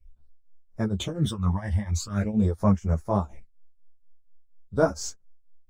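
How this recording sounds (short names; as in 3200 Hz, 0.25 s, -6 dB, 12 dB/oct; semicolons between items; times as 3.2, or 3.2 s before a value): phasing stages 12, 0.44 Hz, lowest notch 410–3600 Hz; tremolo triangle 4.2 Hz, depth 90%; a shimmering, thickened sound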